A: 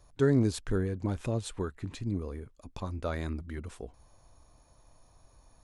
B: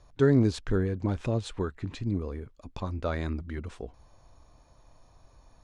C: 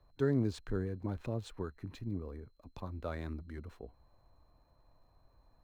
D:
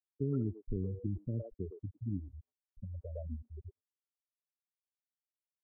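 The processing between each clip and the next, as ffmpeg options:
-af "lowpass=5.6k,volume=3dB"
-filter_complex "[0:a]aeval=exprs='val(0)+0.002*sin(2*PI*4100*n/s)':c=same,acrossover=split=100|880|2300[a][b][c][d];[d]aeval=exprs='sgn(val(0))*max(abs(val(0))-0.00188,0)':c=same[e];[a][b][c][e]amix=inputs=4:normalize=0,volume=-9dB"
-filter_complex "[0:a]afftfilt=real='re*gte(hypot(re,im),0.0562)':imag='im*gte(hypot(re,im),0.0562)':win_size=1024:overlap=0.75,acrossover=split=270|720[a][b][c];[a]acompressor=threshold=-35dB:ratio=4[d];[b]acompressor=threshold=-42dB:ratio=4[e];[c]acompressor=threshold=-56dB:ratio=4[f];[d][e][f]amix=inputs=3:normalize=0,acrossover=split=480|2200[g][h][i];[h]adelay=110[j];[i]adelay=180[k];[g][j][k]amix=inputs=3:normalize=0,volume=3dB"

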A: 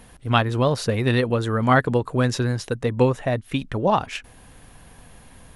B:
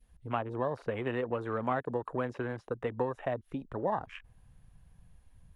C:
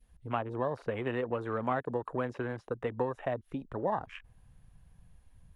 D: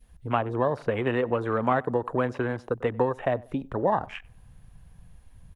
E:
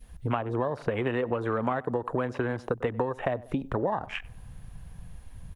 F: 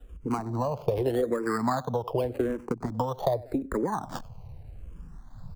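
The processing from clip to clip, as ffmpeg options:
-filter_complex "[0:a]adynamicequalizer=threshold=0.0251:dfrequency=940:dqfactor=0.78:tfrequency=940:tqfactor=0.78:attack=5:release=100:ratio=0.375:range=2.5:mode=boostabove:tftype=bell,acrossover=split=280|910|3200[a][b][c][d];[a]acompressor=threshold=-35dB:ratio=4[e];[b]acompressor=threshold=-23dB:ratio=4[f];[c]acompressor=threshold=-33dB:ratio=4[g];[d]acompressor=threshold=-44dB:ratio=4[h];[e][f][g][h]amix=inputs=4:normalize=0,afwtdn=0.0178,volume=-8dB"
-af anull
-filter_complex "[0:a]asplit=2[a][b];[b]adelay=95,lowpass=f=1.6k:p=1,volume=-22dB,asplit=2[c][d];[d]adelay=95,lowpass=f=1.6k:p=1,volume=0.34[e];[a][c][e]amix=inputs=3:normalize=0,volume=7.5dB"
-af "acompressor=threshold=-32dB:ratio=5,volume=6.5dB"
-filter_complex "[0:a]acrossover=split=170|1300[a][b][c];[c]acrusher=samples=20:mix=1:aa=0.000001:lfo=1:lforange=12:lforate=0.49[d];[a][b][d]amix=inputs=3:normalize=0,asplit=2[e][f];[f]afreqshift=-0.84[g];[e][g]amix=inputs=2:normalize=1,volume=4dB"

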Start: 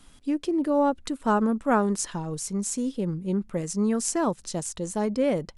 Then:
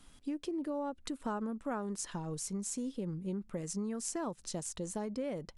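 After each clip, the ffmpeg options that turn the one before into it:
-af "acompressor=threshold=-29dB:ratio=5,volume=-5.5dB"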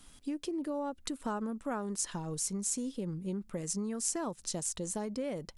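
-af "highshelf=f=4.3k:g=6.5,volume=1dB"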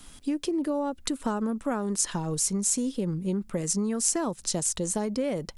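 -filter_complex "[0:a]acrossover=split=480|3000[a][b][c];[b]acompressor=threshold=-37dB:ratio=6[d];[a][d][c]amix=inputs=3:normalize=0,volume=8dB"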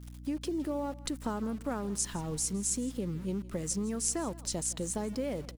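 -af "aeval=exprs='val(0)*gte(abs(val(0)),0.00841)':c=same,aeval=exprs='val(0)+0.0112*(sin(2*PI*60*n/s)+sin(2*PI*2*60*n/s)/2+sin(2*PI*3*60*n/s)/3+sin(2*PI*4*60*n/s)/4+sin(2*PI*5*60*n/s)/5)':c=same,aecho=1:1:163:0.1,volume=-6dB"

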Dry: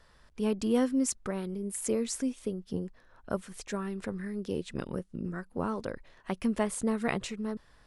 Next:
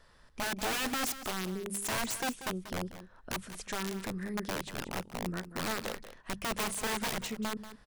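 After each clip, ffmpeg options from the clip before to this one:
-af "aeval=exprs='(mod(23.7*val(0)+1,2)-1)/23.7':c=same,bandreject=f=50:t=h:w=6,bandreject=f=100:t=h:w=6,bandreject=f=150:t=h:w=6,bandreject=f=200:t=h:w=6,aecho=1:1:187:0.224"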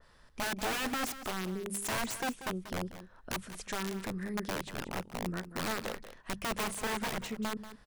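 -af "adynamicequalizer=threshold=0.00447:dfrequency=2900:dqfactor=0.7:tfrequency=2900:tqfactor=0.7:attack=5:release=100:ratio=0.375:range=3:mode=cutabove:tftype=highshelf"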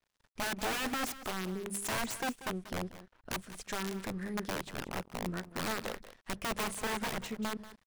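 -af "aeval=exprs='sgn(val(0))*max(abs(val(0))-0.00168,0)':c=same"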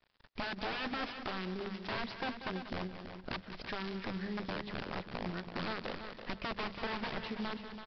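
-af "acompressor=threshold=-50dB:ratio=2.5,aresample=11025,acrusher=bits=3:mode=log:mix=0:aa=0.000001,aresample=44100,aecho=1:1:332|664|996:0.355|0.0852|0.0204,volume=8dB"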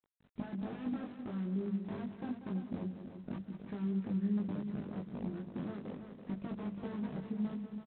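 -filter_complex "[0:a]bandpass=f=190:t=q:w=1.6:csg=0,asplit=2[a][b];[b]adelay=20,volume=-2.5dB[c];[a][c]amix=inputs=2:normalize=0,volume=4.5dB" -ar 8000 -c:a adpcm_g726 -b:a 24k

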